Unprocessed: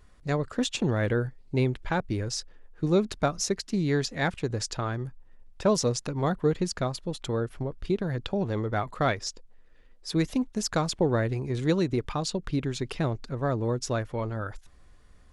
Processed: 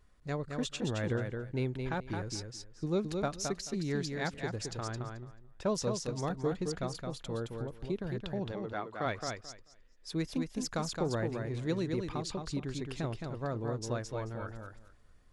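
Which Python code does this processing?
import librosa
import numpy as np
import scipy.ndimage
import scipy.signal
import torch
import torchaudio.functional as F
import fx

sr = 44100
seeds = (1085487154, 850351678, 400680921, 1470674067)

y = fx.bandpass_edges(x, sr, low_hz=fx.line((8.51, 330.0), (9.05, 170.0)), high_hz=5400.0, at=(8.51, 9.05), fade=0.02)
y = fx.echo_feedback(y, sr, ms=218, feedback_pct=18, wet_db=-5.0)
y = y * 10.0 ** (-8.5 / 20.0)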